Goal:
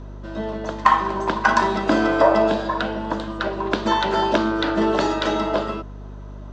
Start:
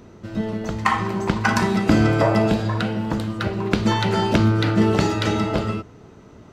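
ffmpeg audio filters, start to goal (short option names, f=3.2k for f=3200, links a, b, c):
-af "highpass=f=230:w=0.5412,highpass=f=230:w=1.3066,equalizer=f=340:t=q:w=4:g=3,equalizer=f=610:t=q:w=4:g=9,equalizer=f=1k:t=q:w=4:g=10,equalizer=f=1.6k:t=q:w=4:g=6,equalizer=f=2.2k:t=q:w=4:g=-4,equalizer=f=3.5k:t=q:w=4:g=5,lowpass=f=7.1k:w=0.5412,lowpass=f=7.1k:w=1.3066,aeval=exprs='val(0)+0.0251*(sin(2*PI*50*n/s)+sin(2*PI*2*50*n/s)/2+sin(2*PI*3*50*n/s)/3+sin(2*PI*4*50*n/s)/4+sin(2*PI*5*50*n/s)/5)':c=same,volume=-2.5dB"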